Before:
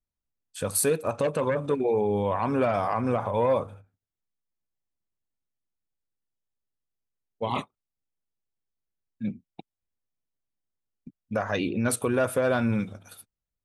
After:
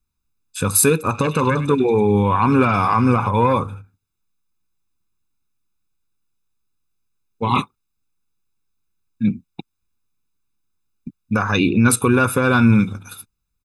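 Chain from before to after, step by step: comb 0.8 ms, depth 82%; 0.99–3.29 delay with a stepping band-pass 0.101 s, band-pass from 3200 Hz, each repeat 0.7 oct, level -4 dB; gain +8.5 dB

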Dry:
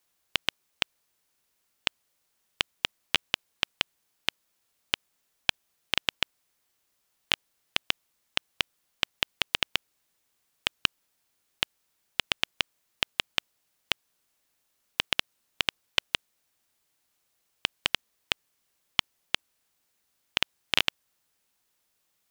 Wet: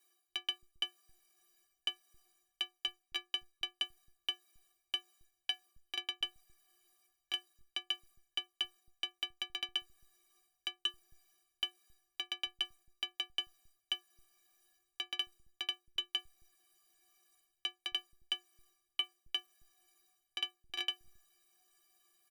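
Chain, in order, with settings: reverse; compressor 16:1, threshold -36 dBFS, peak gain reduction 20 dB; reverse; metallic resonator 350 Hz, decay 0.24 s, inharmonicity 0.03; bands offset in time highs, lows 0.27 s, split 160 Hz; gain +17 dB

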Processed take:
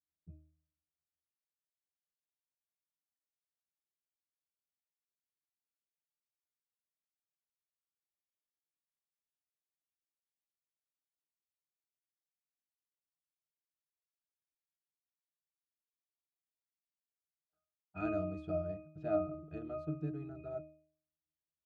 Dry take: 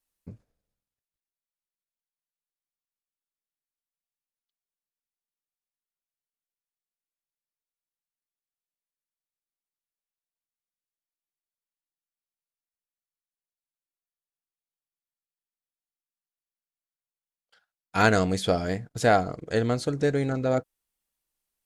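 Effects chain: low-pass opened by the level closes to 850 Hz, open at -25 dBFS; octave resonator D#, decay 0.54 s; gain +5.5 dB

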